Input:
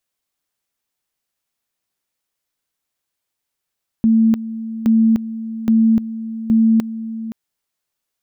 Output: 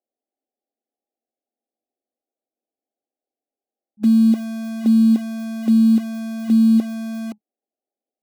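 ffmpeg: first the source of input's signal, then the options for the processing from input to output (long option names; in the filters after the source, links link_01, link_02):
-f lavfi -i "aevalsrc='pow(10,(-9.5-14*gte(mod(t,0.82),0.3))/20)*sin(2*PI*224*t)':duration=3.28:sample_rate=44100"
-filter_complex "[0:a]afftfilt=real='re*between(b*sr/4096,210,830)':imag='im*between(b*sr/4096,210,830)':win_size=4096:overlap=0.75,asplit=2[link_01][link_02];[link_02]aeval=exprs='(mod(20*val(0)+1,2)-1)/20':channel_layout=same,volume=-11dB[link_03];[link_01][link_03]amix=inputs=2:normalize=0"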